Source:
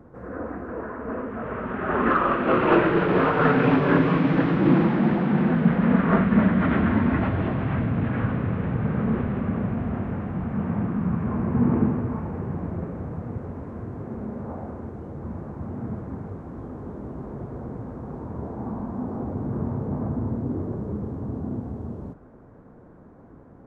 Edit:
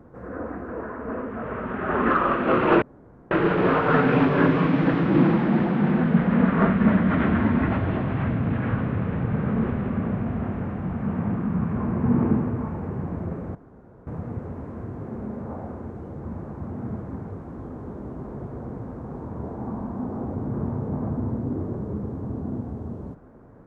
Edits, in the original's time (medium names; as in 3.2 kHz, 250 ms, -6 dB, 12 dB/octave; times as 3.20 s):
2.82 s: insert room tone 0.49 s
13.06 s: insert room tone 0.52 s